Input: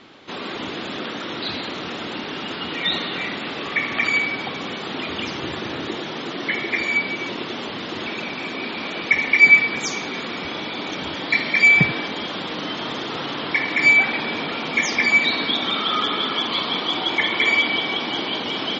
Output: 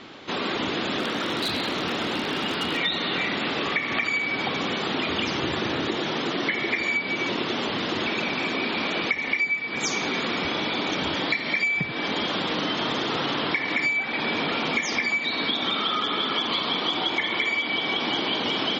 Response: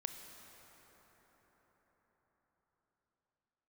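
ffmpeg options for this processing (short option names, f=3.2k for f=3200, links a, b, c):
-filter_complex "[0:a]acompressor=threshold=-25dB:ratio=20,asettb=1/sr,asplit=3[a][b][c];[a]atrim=end=0.994[d];[b]atrim=start=0.99:end=2.77,asetpts=PTS-STARTPTS,afade=t=in:d=0.004:c=qsin,afade=t=out:st=1.776:d=0.004:c=qsin,aeval=exprs='0.0708*(abs(mod(val(0)/0.0708+3,4)-2)-1)':c=same[e];[c]atrim=start=2.766[f];[d][e]acrossfade=d=0.004:c1=hsin:c2=qsin[g];[g][f]acrossfade=d=0.004:c1=qsin:c2=hsin,volume=3.5dB"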